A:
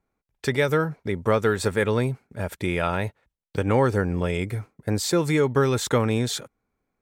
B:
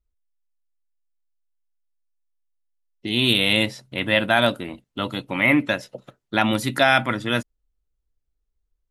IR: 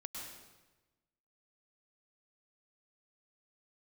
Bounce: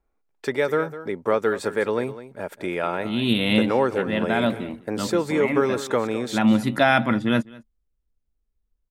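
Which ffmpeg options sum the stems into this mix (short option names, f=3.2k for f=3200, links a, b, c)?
-filter_complex "[0:a]highpass=280,volume=1.5dB,asplit=3[a][b][c];[b]volume=-14dB[d];[1:a]equalizer=f=220:t=o:w=0.26:g=9.5,volume=1dB,asplit=2[e][f];[f]volume=-23dB[g];[c]apad=whole_len=392683[h];[e][h]sidechaincompress=threshold=-25dB:ratio=8:attack=34:release=981[i];[d][g]amix=inputs=2:normalize=0,aecho=0:1:204:1[j];[a][i][j]amix=inputs=3:normalize=0,highshelf=f=2.3k:g=-9"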